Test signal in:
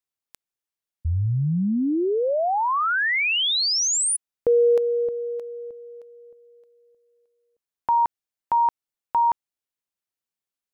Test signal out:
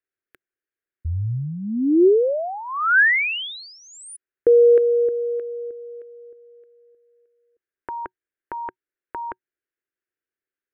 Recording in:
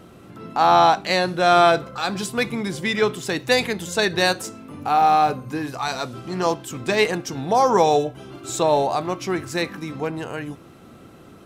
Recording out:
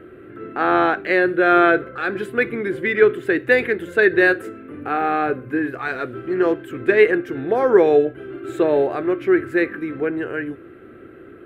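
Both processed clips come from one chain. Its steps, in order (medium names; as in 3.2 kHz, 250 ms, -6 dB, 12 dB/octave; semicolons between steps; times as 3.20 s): FFT filter 120 Hz 0 dB, 180 Hz -7 dB, 370 Hz +12 dB, 930 Hz -10 dB, 1.6 kHz +11 dB, 3.2 kHz -6 dB, 5.7 kHz -25 dB, 11 kHz -11 dB; trim -1.5 dB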